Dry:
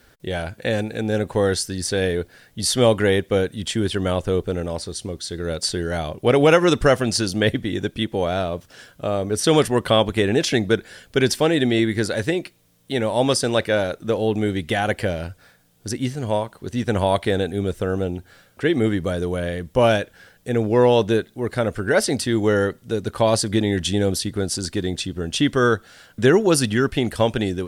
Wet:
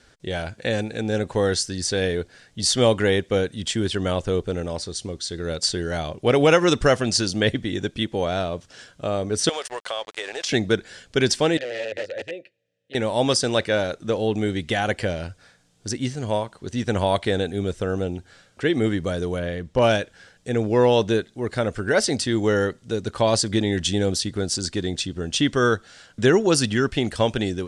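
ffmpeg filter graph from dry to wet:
-filter_complex "[0:a]asettb=1/sr,asplit=3[s0][s1][s2];[s0]atrim=end=9.494[s3];[s1]atrim=start=9.49:end=10.49,asetpts=PTS-STARTPTS,afade=t=in:d=0.004:c=qsin,afade=t=out:st=0.996:d=0.004:c=qsin,highpass=f=510:w=0.5412,highpass=f=510:w=1.3066,aeval=exprs='sgn(val(0))*max(abs(val(0))-0.015,0)':c=same,acompressor=threshold=0.0562:ratio=3:attack=3.2:release=140:knee=1:detection=peak[s4];[s2]atrim=start=10.486[s5];[s3][s4]acrossfade=d=0.004:c1=hsin:c2=qsin[s6];[s6][s5]acrossfade=d=0.004:c1=qsin:c2=hsin,asettb=1/sr,asplit=3[s7][s8][s9];[s7]atrim=end=11.574[s10];[s8]atrim=start=11.57:end=12.95,asetpts=PTS-STARTPTS,afade=t=in:d=0.004:c=qsin,afade=t=out:st=1.376:d=0.004:c=qsin,equalizer=f=100:w=1.3:g=15,aeval=exprs='(mod(3.35*val(0)+1,2)-1)/3.35':c=same,asplit=3[s11][s12][s13];[s11]bandpass=f=530:t=q:w=8,volume=1[s14];[s12]bandpass=f=1840:t=q:w=8,volume=0.501[s15];[s13]bandpass=f=2480:t=q:w=8,volume=0.355[s16];[s14][s15][s16]amix=inputs=3:normalize=0[s17];[s9]atrim=start=12.946[s18];[s10][s17]acrossfade=d=0.004:c1=hsin:c2=qsin[s19];[s19][s18]acrossfade=d=0.004:c1=qsin:c2=hsin,asettb=1/sr,asplit=3[s20][s21][s22];[s20]atrim=end=19.394[s23];[s21]atrim=start=19.39:end=19.82,asetpts=PTS-STARTPTS,afade=t=in:d=0.004:c=qsin,afade=t=out:st=0.426:d=0.004:c=qsin,lowpass=f=3600:p=1,asoftclip=type=hard:threshold=0.376[s24];[s22]atrim=start=19.816[s25];[s23][s24]acrossfade=d=0.004:c1=hsin:c2=qsin[s26];[s26][s25]acrossfade=d=0.004:c1=qsin:c2=hsin,lowpass=f=7900:w=0.5412,lowpass=f=7900:w=1.3066,highshelf=f=4900:g=7.5,volume=0.794"

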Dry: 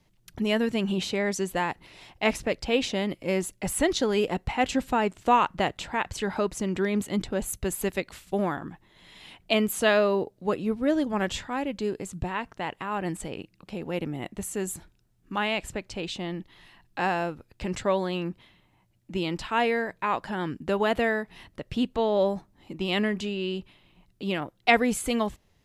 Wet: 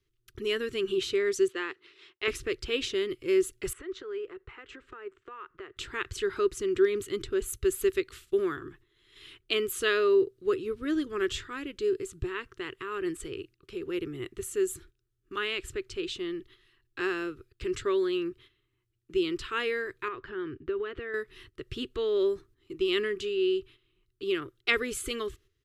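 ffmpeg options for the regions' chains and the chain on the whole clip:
-filter_complex "[0:a]asettb=1/sr,asplit=3[s0][s1][s2];[s0]atrim=end=1.484[s3];[s1]atrim=start=1.48:end=2.28,asetpts=PTS-STARTPTS,afade=t=in:d=0.004:c=qsin,afade=t=out:st=0.796:d=0.004:c=qsin,highpass=360,lowpass=4800,agate=range=0.0224:threshold=0.00178:ratio=3:release=100:detection=peak[s4];[s2]atrim=start=2.276[s5];[s3][s4]acrossfade=d=0.004:c1=hsin:c2=qsin[s6];[s6][s5]acrossfade=d=0.004:c1=qsin:c2=hsin,asettb=1/sr,asplit=3[s7][s8][s9];[s7]atrim=end=3.734[s10];[s8]atrim=start=3.73:end=5.77,asetpts=PTS-STARTPTS,afade=t=in:d=0.004:c=qsin,afade=t=out:st=2.036:d=0.004:c=qsin,lowpass=f=9000:w=0.5412,lowpass=f=9000:w=1.3066,acrossover=split=410 2200:gain=0.2 1 0.1[s11][s12][s13];[s11][s12][s13]amix=inputs=3:normalize=0,acompressor=threshold=0.0141:ratio=3:attack=3.2:release=140:knee=1:detection=peak[s14];[s9]atrim=start=5.766[s15];[s10][s14]acrossfade=d=0.004:c1=hsin:c2=qsin[s16];[s16][s15]acrossfade=d=0.004:c1=qsin:c2=hsin,asettb=1/sr,asplit=3[s17][s18][s19];[s17]atrim=end=20.084[s20];[s18]atrim=start=20.08:end=21.14,asetpts=PTS-STARTPTS,afade=t=in:d=0.004:c=qsin,afade=t=out:st=1.056:d=0.004:c=qsin,lowpass=2500,acompressor=threshold=0.0398:ratio=4:attack=3.2:release=140:knee=1:detection=peak[s21];[s19]atrim=start=21.136[s22];[s20][s21]acrossfade=d=0.004:c1=hsin:c2=qsin[s23];[s23][s22]acrossfade=d=0.004:c1=qsin:c2=hsin,agate=range=0.355:threshold=0.00316:ratio=16:detection=peak,firequalizer=gain_entry='entry(120,0);entry(190,-19);entry(380,9);entry(560,-17);entry(820,-23);entry(1200,1);entry(2200,-3);entry(3100,1);entry(4800,-2)':delay=0.05:min_phase=1,volume=0.841"

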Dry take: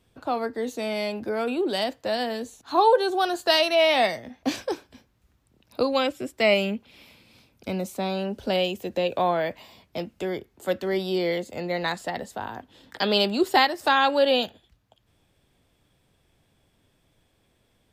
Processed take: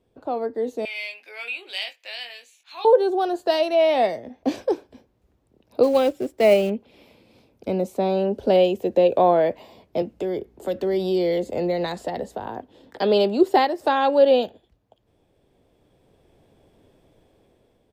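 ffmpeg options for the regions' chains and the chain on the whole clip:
-filter_complex "[0:a]asettb=1/sr,asplit=3[s0][s1][s2];[s0]atrim=end=0.854[s3];[s1]atrim=start=0.85:end=2.85,asetpts=PTS-STARTPTS,afade=t=in:d=0.004:c=qsin,afade=t=out:st=1.996:d=0.004:c=qsin,highpass=f=2400:t=q:w=5.1,asplit=2[s4][s5];[s5]adelay=21,volume=0.473[s6];[s4][s6]amix=inputs=2:normalize=0,atrim=end_sample=88200[s7];[s2]atrim=start=2.846[s8];[s3][s7]acrossfade=d=0.004:c1=hsin:c2=qsin[s9];[s9][s8]acrossfade=d=0.004:c1=qsin:c2=hsin,asettb=1/sr,asplit=3[s10][s11][s12];[s10]atrim=end=5.834[s13];[s11]atrim=start=5.83:end=6.7,asetpts=PTS-STARTPTS,afade=t=in:d=0.004:c=qsin,afade=t=out:st=0.866:d=0.004:c=qsin,acrusher=bits=3:mode=log:mix=0:aa=0.000001,bandreject=f=1000:w=13[s14];[s12]atrim=start=6.696[s15];[s13][s14]acrossfade=d=0.004:c1=hsin:c2=qsin[s16];[s16][s15]acrossfade=d=0.004:c1=qsin:c2=hsin,asettb=1/sr,asplit=3[s17][s18][s19];[s17]atrim=end=10.024[s20];[s18]atrim=start=10.02:end=12.46,asetpts=PTS-STARTPTS,afade=t=in:d=0.004:c=qsin,afade=t=out:st=2.436:d=0.004:c=qsin,acrossover=split=150|3000[s21][s22][s23];[s22]acompressor=threshold=0.0251:ratio=4:attack=3.2:release=140:knee=2.83:detection=peak[s24];[s21][s24][s23]amix=inputs=3:normalize=0,aeval=exprs='val(0)+0.000891*(sin(2*PI*60*n/s)+sin(2*PI*2*60*n/s)/2+sin(2*PI*3*60*n/s)/3+sin(2*PI*4*60*n/s)/4+sin(2*PI*5*60*n/s)/5)':c=same[s25];[s19]atrim=start=12.456[s26];[s20][s25]acrossfade=d=0.004:c1=hsin:c2=qsin[s27];[s27][s26]acrossfade=d=0.004:c1=qsin:c2=hsin,firequalizer=gain_entry='entry(130,0);entry(420,9);entry(1300,-4);entry(7300,-7)':delay=0.05:min_phase=1,dynaudnorm=f=510:g=5:m=3.76,volume=0.562"

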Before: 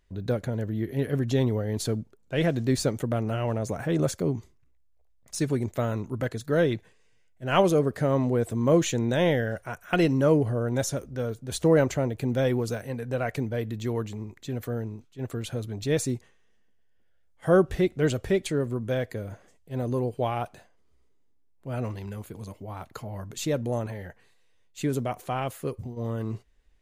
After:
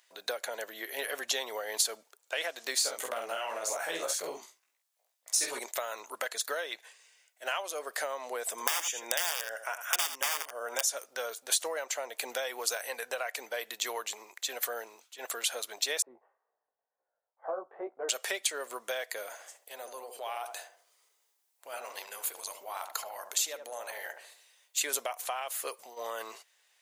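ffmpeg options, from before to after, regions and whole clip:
-filter_complex "[0:a]asettb=1/sr,asplit=3[s0][s1][s2];[s0]atrim=end=2.754[s3];[s1]atrim=start=2.75:end=5.59,asetpts=PTS-STARTPTS,afade=t=in:d=0.004:c=qsin,afade=t=out:st=2.836:d=0.004:c=qsin,equalizer=f=130:w=0.77:g=9.5,flanger=delay=15.5:depth=3.3:speed=2.9,asplit=2[s4][s5];[s5]adelay=48,volume=0.596[s6];[s4][s6]amix=inputs=2:normalize=0,atrim=end_sample=125244[s7];[s2]atrim=start=5.586[s8];[s3][s7]acrossfade=d=0.004:c1=hsin:c2=qsin[s9];[s9][s8]acrossfade=d=0.004:c1=qsin:c2=hsin,asettb=1/sr,asplit=3[s10][s11][s12];[s10]atrim=end=8.504[s13];[s11]atrim=start=8.5:end=10.85,asetpts=PTS-STARTPTS,afade=t=in:d=0.004:c=qsin,afade=t=out:st=2.346:d=0.004:c=qsin,aeval=exprs='(mod(6.68*val(0)+1,2)-1)/6.68':c=same,asuperstop=centerf=4100:order=8:qfactor=5.7,aecho=1:1:81:0.237,atrim=end_sample=103635[s14];[s12]atrim=start=10.846[s15];[s13][s14]acrossfade=d=0.004:c1=hsin:c2=qsin[s16];[s16][s15]acrossfade=d=0.004:c1=qsin:c2=hsin,asettb=1/sr,asplit=3[s17][s18][s19];[s17]atrim=end=16.024[s20];[s18]atrim=start=16.02:end=18.09,asetpts=PTS-STARTPTS,afade=t=in:d=0.004:c=qsin,afade=t=out:st=2.066:d=0.004:c=qsin,lowpass=f=1000:w=0.5412,lowpass=f=1000:w=1.3066,flanger=delay=15:depth=5.2:speed=2[s21];[s19]atrim=start=18.086[s22];[s20][s21]acrossfade=d=0.004:c1=hsin:c2=qsin[s23];[s23][s22]acrossfade=d=0.004:c1=qsin:c2=hsin,asettb=1/sr,asplit=3[s24][s25][s26];[s24]atrim=end=19.324[s27];[s25]atrim=start=19.32:end=24.81,asetpts=PTS-STARTPTS,afade=t=in:d=0.004:c=qsin,afade=t=out:st=5.486:d=0.004:c=qsin,highshelf=f=6100:g=4,acompressor=threshold=0.0158:ratio=6:attack=3.2:release=140:knee=1:detection=peak,asplit=2[s28][s29];[s29]adelay=73,lowpass=f=850:p=1,volume=0.562,asplit=2[s30][s31];[s31]adelay=73,lowpass=f=850:p=1,volume=0.51,asplit=2[s32][s33];[s33]adelay=73,lowpass=f=850:p=1,volume=0.51,asplit=2[s34][s35];[s35]adelay=73,lowpass=f=850:p=1,volume=0.51,asplit=2[s36][s37];[s37]adelay=73,lowpass=f=850:p=1,volume=0.51,asplit=2[s38][s39];[s39]adelay=73,lowpass=f=850:p=1,volume=0.51[s40];[s28][s30][s32][s34][s36][s38][s40]amix=inputs=7:normalize=0,atrim=end_sample=242109[s41];[s26]atrim=start=24.806[s42];[s27][s41]acrossfade=d=0.004:c1=hsin:c2=qsin[s43];[s43][s42]acrossfade=d=0.004:c1=qsin:c2=hsin,highpass=f=640:w=0.5412,highpass=f=640:w=1.3066,acompressor=threshold=0.0126:ratio=16,highshelf=f=3000:g=10.5,volume=1.88"

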